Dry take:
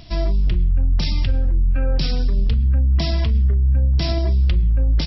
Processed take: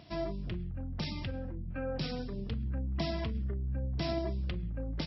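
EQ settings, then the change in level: high-pass 110 Hz 12 dB/octave; bass shelf 240 Hz -4.5 dB; treble shelf 3 kHz -12 dB; -5.5 dB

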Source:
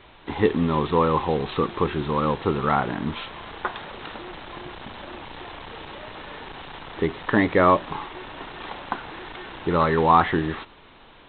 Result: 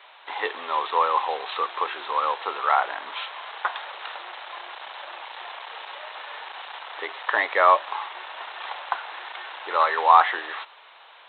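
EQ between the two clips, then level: high-pass 640 Hz 24 dB/octave; +2.5 dB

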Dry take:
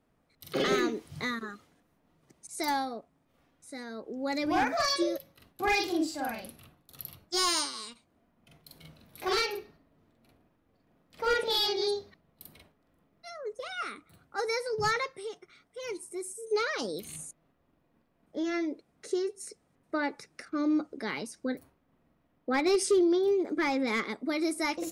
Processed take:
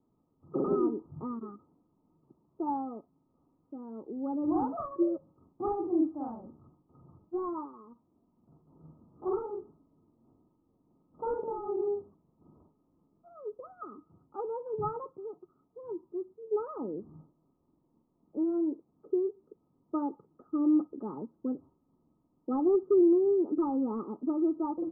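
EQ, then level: rippled Chebyshev low-pass 1.3 kHz, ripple 9 dB; peaking EQ 140 Hz +6.5 dB 2.1 oct; 0.0 dB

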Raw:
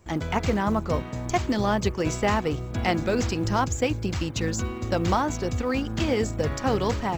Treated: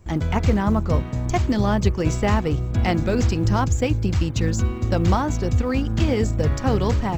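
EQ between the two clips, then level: bass shelf 180 Hz +11.5 dB; 0.0 dB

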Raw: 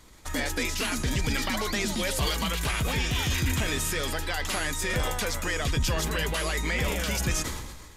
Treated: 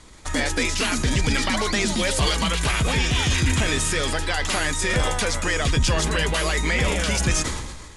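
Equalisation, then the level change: steep low-pass 11 kHz 96 dB/octave; +6.0 dB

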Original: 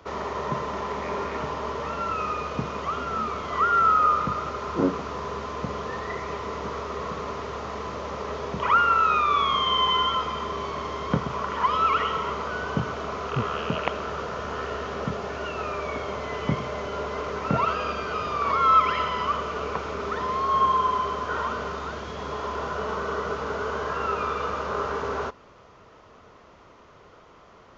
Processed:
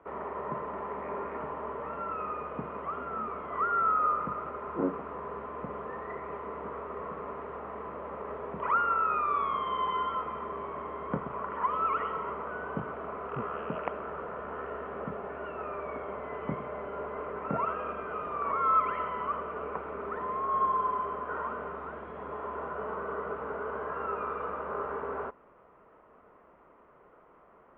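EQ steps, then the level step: Bessel low-pass 1.4 kHz, order 8; peaking EQ 100 Hz -11.5 dB 0.5 oct; bass shelf 200 Hz -6.5 dB; -4.5 dB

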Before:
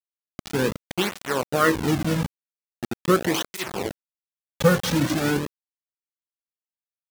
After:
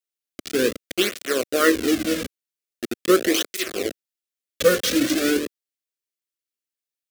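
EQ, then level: bass shelf 120 Hz -11 dB; static phaser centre 370 Hz, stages 4; +5.5 dB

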